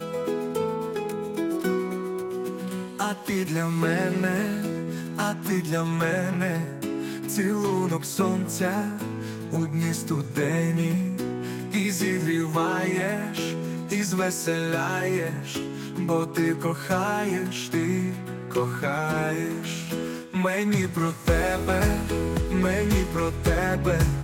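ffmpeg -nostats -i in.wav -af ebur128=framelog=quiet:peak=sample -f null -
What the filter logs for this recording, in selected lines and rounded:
Integrated loudness:
  I:         -26.4 LUFS
  Threshold: -36.4 LUFS
Loudness range:
  LRA:         2.6 LU
  Threshold: -46.5 LUFS
  LRA low:   -27.4 LUFS
  LRA high:  -24.7 LUFS
Sample peak:
  Peak:      -10.1 dBFS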